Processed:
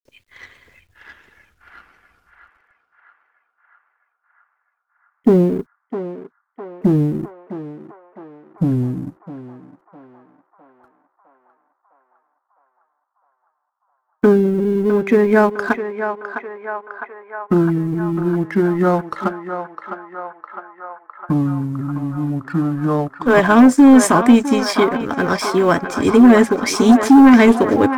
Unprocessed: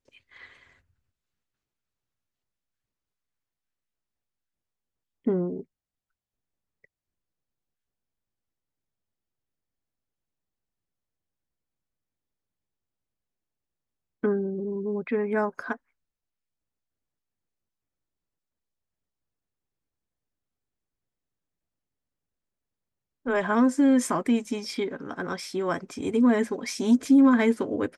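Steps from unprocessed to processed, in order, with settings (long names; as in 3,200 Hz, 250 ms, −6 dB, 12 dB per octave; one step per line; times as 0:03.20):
mu-law and A-law mismatch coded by A
low-shelf EQ 150 Hz +5 dB
sine wavefolder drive 5 dB, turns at −9 dBFS
delay with pitch and tempo change per echo 582 ms, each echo −3 semitones, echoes 2
feedback echo with a band-pass in the loop 657 ms, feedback 77%, band-pass 1,100 Hz, level −6 dB
level +5 dB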